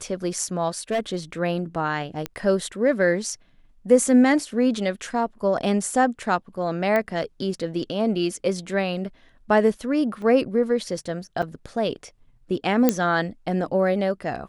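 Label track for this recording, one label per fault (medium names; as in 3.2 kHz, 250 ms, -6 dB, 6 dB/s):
0.910000	1.160000	clipped -19 dBFS
2.260000	2.260000	pop -13 dBFS
6.960000	6.960000	pop -12 dBFS
10.220000	10.220000	dropout 2.2 ms
11.420000	11.430000	dropout 5.4 ms
12.890000	12.890000	pop -4 dBFS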